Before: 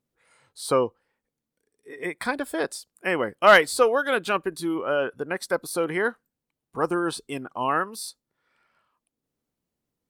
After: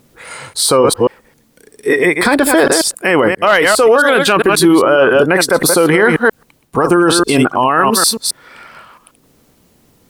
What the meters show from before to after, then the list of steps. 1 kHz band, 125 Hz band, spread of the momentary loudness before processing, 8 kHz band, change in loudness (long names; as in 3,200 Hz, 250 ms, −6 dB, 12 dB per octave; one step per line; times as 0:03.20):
+11.5 dB, +18.0 dB, 16 LU, +20.5 dB, +13.0 dB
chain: delay that plays each chunk backwards 134 ms, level −10 dB
reversed playback
downward compressor 6 to 1, threshold −31 dBFS, peak gain reduction 20.5 dB
reversed playback
boost into a limiter +32 dB
level −1 dB